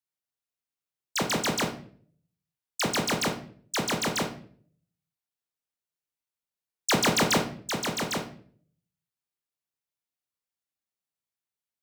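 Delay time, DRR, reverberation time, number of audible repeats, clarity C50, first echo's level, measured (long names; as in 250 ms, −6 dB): no echo audible, 3.5 dB, 0.50 s, no echo audible, 9.5 dB, no echo audible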